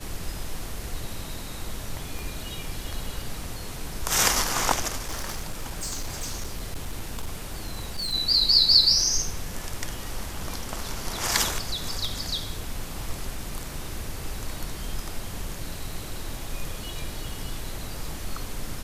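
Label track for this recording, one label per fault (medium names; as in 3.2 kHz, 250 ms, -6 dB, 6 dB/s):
2.190000	2.190000	pop
5.020000	8.140000	clipped -26 dBFS
17.290000	17.290000	dropout 2.4 ms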